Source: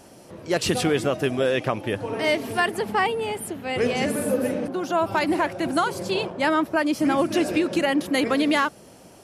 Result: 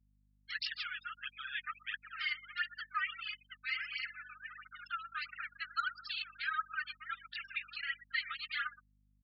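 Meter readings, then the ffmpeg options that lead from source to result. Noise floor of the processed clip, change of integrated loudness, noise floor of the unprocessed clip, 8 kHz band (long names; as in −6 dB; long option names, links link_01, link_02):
−72 dBFS, −16.0 dB, −48 dBFS, below −40 dB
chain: -filter_complex "[0:a]aeval=exprs='sgn(val(0))*max(abs(val(0))-0.0168,0)':channel_layout=same,acompressor=threshold=-29dB:ratio=10,aphaser=in_gain=1:out_gain=1:delay=3.5:decay=0.72:speed=1.5:type=triangular,aecho=1:1:120|240|360|480:0.126|0.0541|0.0233|0.01,afftfilt=real='re*between(b*sr/4096,1200,5500)':imag='im*between(b*sr/4096,1200,5500)':win_size=4096:overlap=0.75,volume=24dB,asoftclip=hard,volume=-24dB,asplit=2[link_01][link_02];[link_02]adelay=14,volume=-12dB[link_03];[link_01][link_03]amix=inputs=2:normalize=0,afftfilt=real='re*gte(hypot(re,im),0.0158)':imag='im*gte(hypot(re,im),0.0158)':win_size=1024:overlap=0.75,aeval=exprs='val(0)+0.000398*(sin(2*PI*50*n/s)+sin(2*PI*2*50*n/s)/2+sin(2*PI*3*50*n/s)/3+sin(2*PI*4*50*n/s)/4+sin(2*PI*5*50*n/s)/5)':channel_layout=same,volume=-2.5dB"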